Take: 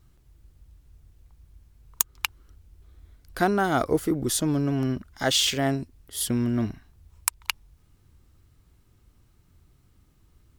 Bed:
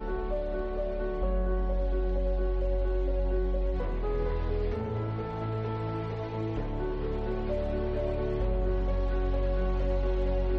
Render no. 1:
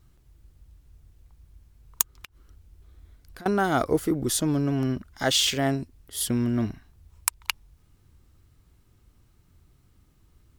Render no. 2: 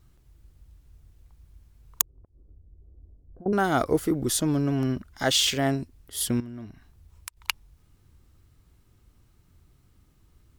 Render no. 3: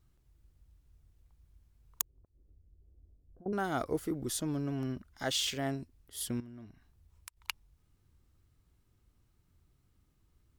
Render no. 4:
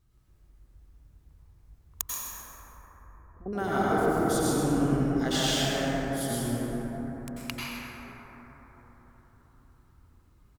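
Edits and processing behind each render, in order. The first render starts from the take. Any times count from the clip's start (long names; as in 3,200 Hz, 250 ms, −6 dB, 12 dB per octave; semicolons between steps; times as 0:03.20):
0:02.11–0:03.46: downward compressor 8 to 1, threshold −41 dBFS
0:02.01–0:03.53: inverse Chebyshev low-pass filter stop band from 3,500 Hz, stop band 80 dB; 0:06.40–0:07.37: downward compressor 2 to 1, threshold −47 dBFS
level −10 dB
echo with shifted repeats 131 ms, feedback 34%, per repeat −100 Hz, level −11 dB; dense smooth reverb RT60 4.9 s, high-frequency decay 0.25×, pre-delay 80 ms, DRR −8 dB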